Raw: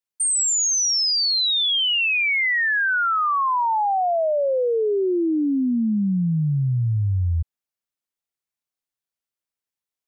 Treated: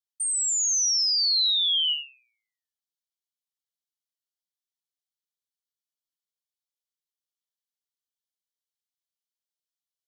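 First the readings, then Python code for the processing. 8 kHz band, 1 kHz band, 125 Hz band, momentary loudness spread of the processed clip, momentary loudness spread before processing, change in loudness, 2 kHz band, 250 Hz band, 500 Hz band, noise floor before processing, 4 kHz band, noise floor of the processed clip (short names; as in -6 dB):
-4.0 dB, under -40 dB, under -40 dB, 6 LU, 5 LU, -1.5 dB, -31.0 dB, under -40 dB, under -40 dB, under -85 dBFS, -3.0 dB, under -85 dBFS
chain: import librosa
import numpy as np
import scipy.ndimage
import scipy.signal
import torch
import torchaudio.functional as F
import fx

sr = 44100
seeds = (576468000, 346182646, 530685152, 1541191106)

y = scipy.signal.sosfilt(scipy.signal.cheby1(10, 1.0, 2900.0, 'highpass', fs=sr, output='sos'), x)
y = fx.peak_eq(y, sr, hz=4300.0, db=4.5, octaves=1.6)
y = y + 10.0 ** (-9.5 / 20.0) * np.pad(y, (int(77 * sr / 1000.0), 0))[:len(y)]
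y = y * librosa.db_to_amplitude(-6.5)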